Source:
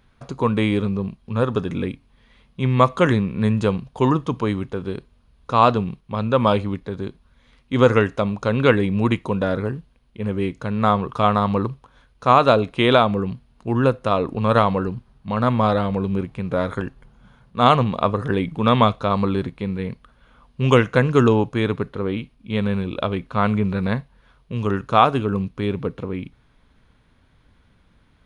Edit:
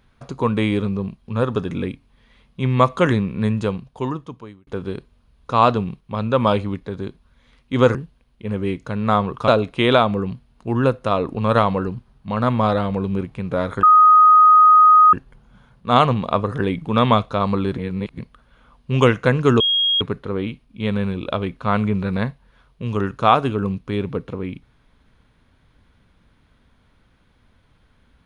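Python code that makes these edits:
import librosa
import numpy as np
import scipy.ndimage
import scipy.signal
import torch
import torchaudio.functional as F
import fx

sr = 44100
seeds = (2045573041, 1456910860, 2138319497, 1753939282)

y = fx.edit(x, sr, fx.fade_out_span(start_s=3.34, length_s=1.33),
    fx.cut(start_s=7.95, length_s=1.75),
    fx.cut(start_s=11.23, length_s=1.25),
    fx.insert_tone(at_s=16.83, length_s=1.3, hz=1250.0, db=-7.0),
    fx.reverse_span(start_s=19.48, length_s=0.41),
    fx.bleep(start_s=21.3, length_s=0.41, hz=3270.0, db=-15.0), tone=tone)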